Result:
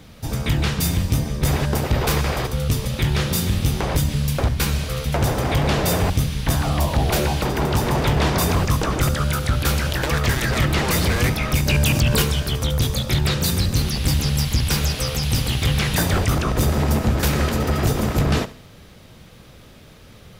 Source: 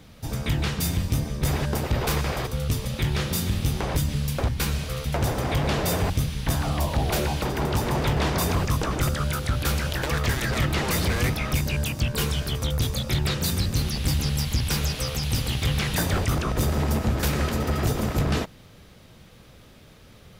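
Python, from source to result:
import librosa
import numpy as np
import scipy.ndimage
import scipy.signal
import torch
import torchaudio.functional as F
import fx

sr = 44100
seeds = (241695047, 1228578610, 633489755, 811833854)

p1 = x + fx.echo_feedback(x, sr, ms=70, feedback_pct=40, wet_db=-17.5, dry=0)
p2 = fx.env_flatten(p1, sr, amount_pct=70, at=(11.68, 12.22))
y = p2 * librosa.db_to_amplitude(4.5)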